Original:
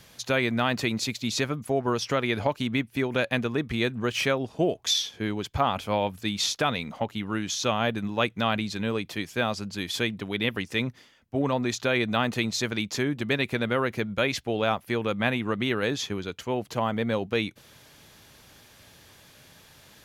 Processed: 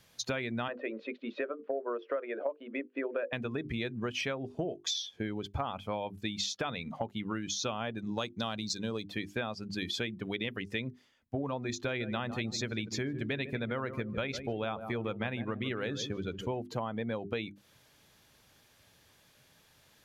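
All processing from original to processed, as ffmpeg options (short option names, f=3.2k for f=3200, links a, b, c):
-filter_complex "[0:a]asettb=1/sr,asplit=3[a][b][c];[a]atrim=end=0.684[d];[b]atrim=start=0.68:end=3.33,asetpts=PTS-STARTPTS,afade=t=in:d=0.004:c=qsin,afade=t=out:st=2.646:d=0.004:c=qsin,highpass=f=320:w=0.5412,highpass=f=320:w=1.3066,equalizer=f=550:t=q:w=4:g=9,equalizer=f=830:t=q:w=4:g=-9,equalizer=f=2.2k:t=q:w=4:g=-7,lowpass=f=2.5k:w=0.5412,lowpass=f=2.5k:w=1.3066,bandreject=f=50:t=h:w=6,bandreject=f=100:t=h:w=6,bandreject=f=150:t=h:w=6,bandreject=f=200:t=h:w=6,bandreject=f=250:t=h:w=6,bandreject=f=300:t=h:w=6,bandreject=f=350:t=h:w=6,bandreject=f=400:t=h:w=6,bandreject=f=450:t=h:w=6,bandreject=f=500:t=h:w=6[e];[c]atrim=start=3.326[f];[d][e]acrossfade=d=0.004:c1=hsin:c2=qsin[g];[g][f]acrossfade=d=0.004:c1=qsin:c2=hsin,asettb=1/sr,asplit=3[h][i][j];[h]atrim=end=7.994[k];[i]atrim=start=7.99:end=9.07,asetpts=PTS-STARTPTS,afade=t=in:d=0.004:c=qsin,afade=t=out:st=1.076:d=0.004:c=qsin,highshelf=f=3.7k:t=q:w=1.5:g=13,adynamicsmooth=sensitivity=7.5:basefreq=3.6k[l];[j]atrim=start=9.066[m];[k][l]acrossfade=d=0.004:c1=hsin:c2=qsin[n];[n][m]acrossfade=d=0.004:c1=qsin:c2=hsin,asettb=1/sr,asplit=3[o][p][q];[o]atrim=end=11.694[r];[p]atrim=start=11.69:end=16.62,asetpts=PTS-STARTPTS,afade=t=in:d=0.004:c=qsin,afade=t=out:st=4.926:d=0.004:c=qsin,lowshelf=f=80:g=9.5,asplit=2[s][t];[t]adelay=152,lowpass=f=1.6k:p=1,volume=-11dB,asplit=2[u][v];[v]adelay=152,lowpass=f=1.6k:p=1,volume=0.41,asplit=2[w][x];[x]adelay=152,lowpass=f=1.6k:p=1,volume=0.41,asplit=2[y][z];[z]adelay=152,lowpass=f=1.6k:p=1,volume=0.41[aa];[s][u][w][y][aa]amix=inputs=5:normalize=0,atrim=end_sample=217413[ab];[q]atrim=start=16.616[ac];[r][ab]acrossfade=d=0.004:c1=hsin:c2=qsin[ad];[ad][ac]acrossfade=d=0.004:c1=qsin:c2=hsin,bandreject=f=50:t=h:w=6,bandreject=f=100:t=h:w=6,bandreject=f=150:t=h:w=6,bandreject=f=200:t=h:w=6,bandreject=f=250:t=h:w=6,bandreject=f=300:t=h:w=6,bandreject=f=350:t=h:w=6,bandreject=f=400:t=h:w=6,afftdn=nr=14:nf=-36,acompressor=threshold=-36dB:ratio=6,volume=3.5dB"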